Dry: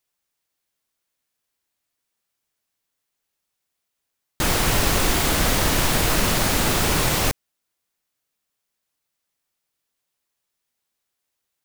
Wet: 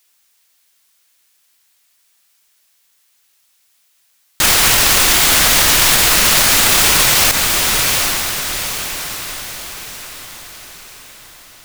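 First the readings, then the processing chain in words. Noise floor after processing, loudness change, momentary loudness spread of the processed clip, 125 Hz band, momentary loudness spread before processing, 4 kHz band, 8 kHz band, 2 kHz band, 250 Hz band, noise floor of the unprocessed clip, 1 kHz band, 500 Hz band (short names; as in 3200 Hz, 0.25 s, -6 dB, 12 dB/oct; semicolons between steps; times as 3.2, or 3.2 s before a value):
-59 dBFS, +9.5 dB, 17 LU, -1.0 dB, 3 LU, +12.5 dB, +13.5 dB, +11.0 dB, 0.0 dB, -80 dBFS, +7.0 dB, +2.5 dB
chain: tilt shelf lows -7.5 dB, about 900 Hz; on a send: diffused feedback echo 0.812 s, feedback 49%, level -12.5 dB; on the sum: maximiser +14.5 dB; gain -1 dB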